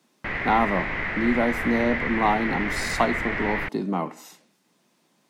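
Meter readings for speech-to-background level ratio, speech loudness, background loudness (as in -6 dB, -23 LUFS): 1.5 dB, -26.0 LUFS, -27.5 LUFS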